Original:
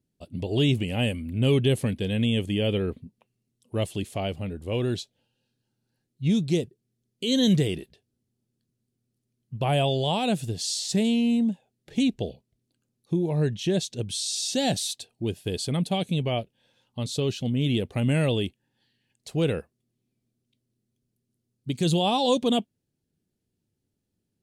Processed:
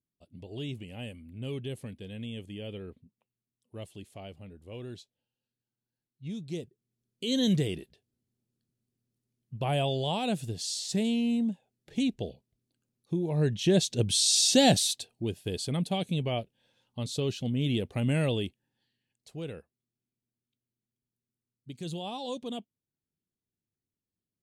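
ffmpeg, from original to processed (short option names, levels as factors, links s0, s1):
-af "volume=2,afade=t=in:st=6.39:d=0.85:silence=0.316228,afade=t=in:st=13.25:d=1.12:silence=0.281838,afade=t=out:st=14.37:d=0.91:silence=0.316228,afade=t=out:st=18.26:d=1.14:silence=0.316228"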